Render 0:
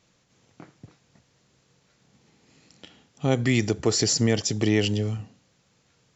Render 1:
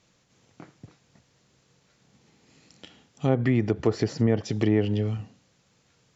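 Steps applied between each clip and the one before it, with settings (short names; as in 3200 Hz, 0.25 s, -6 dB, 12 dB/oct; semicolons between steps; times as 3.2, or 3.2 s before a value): treble ducked by the level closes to 1300 Hz, closed at -17.5 dBFS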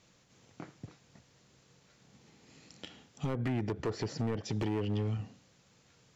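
compressor 2:1, threshold -32 dBFS, peak gain reduction 9 dB; overloaded stage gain 27.5 dB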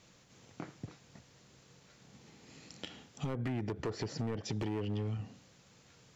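compressor 2:1, threshold -41 dBFS, peak gain reduction 6.5 dB; gain +3 dB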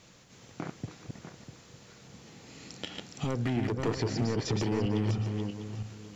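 regenerating reverse delay 0.324 s, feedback 44%, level -3.5 dB; gain +5.5 dB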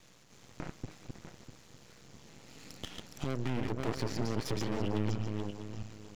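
half-wave rectifier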